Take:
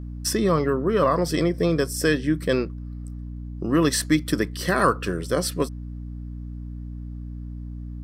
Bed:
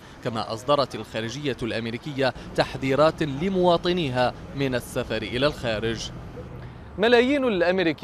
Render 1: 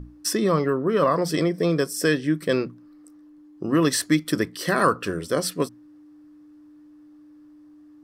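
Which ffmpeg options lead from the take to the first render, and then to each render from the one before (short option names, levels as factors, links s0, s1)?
-af "bandreject=f=60:t=h:w=6,bandreject=f=120:t=h:w=6,bandreject=f=180:t=h:w=6,bandreject=f=240:t=h:w=6"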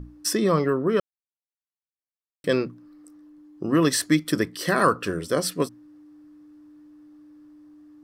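-filter_complex "[0:a]asplit=3[s0][s1][s2];[s0]atrim=end=1,asetpts=PTS-STARTPTS,afade=t=out:st=0.996:d=0.004:c=hsin[s3];[s1]atrim=start=1:end=2.44,asetpts=PTS-STARTPTS,volume=0[s4];[s2]atrim=start=2.44,asetpts=PTS-STARTPTS,afade=t=in:d=0.004:c=hsin[s5];[s3][s4][s5]concat=n=3:v=0:a=1"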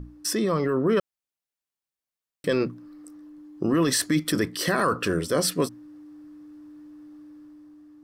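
-af "alimiter=limit=0.133:level=0:latency=1:release=10,dynaudnorm=f=110:g=13:m=1.58"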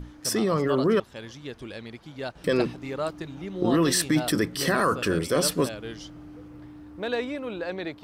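-filter_complex "[1:a]volume=0.282[s0];[0:a][s0]amix=inputs=2:normalize=0"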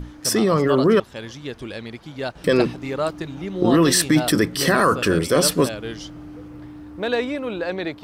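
-af "volume=2"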